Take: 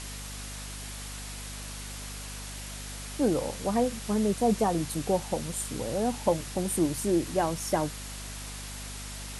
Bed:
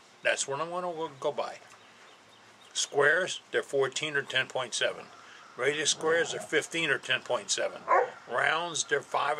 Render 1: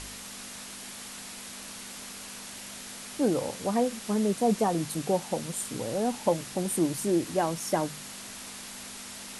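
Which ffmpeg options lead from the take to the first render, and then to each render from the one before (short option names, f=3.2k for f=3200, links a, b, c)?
-af "bandreject=f=50:t=h:w=4,bandreject=f=100:t=h:w=4,bandreject=f=150:t=h:w=4"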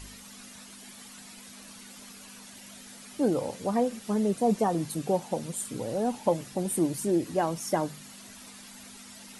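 -af "afftdn=nr=10:nf=-43"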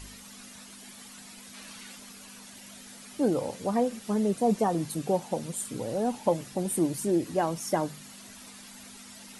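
-filter_complex "[0:a]asettb=1/sr,asplit=3[a][b][c];[a]atrim=end=1.544[d];[b]atrim=start=1.54:end=1.96,asetpts=PTS-STARTPTS,afade=t=in:d=0.004:c=qsin,afade=t=out:st=0.416:d=0.004:c=qsin,equalizer=f=2.3k:t=o:w=2.3:g=5.5[e];[c]atrim=start=1.956[f];[d][e]acrossfade=d=0.004:c1=hsin:c2=qsin[g];[g][f]acrossfade=d=0.004:c1=qsin:c2=hsin"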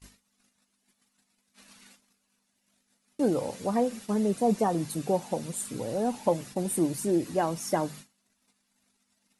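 -af "bandreject=f=3.2k:w=25,agate=range=-28dB:threshold=-43dB:ratio=16:detection=peak"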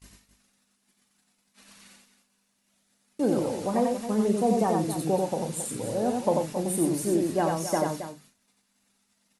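-filter_complex "[0:a]asplit=2[a][b];[b]adelay=37,volume=-12dB[c];[a][c]amix=inputs=2:normalize=0,aecho=1:1:90.38|271.1:0.708|0.282"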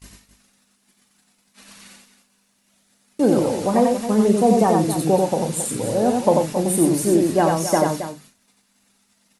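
-af "volume=8dB"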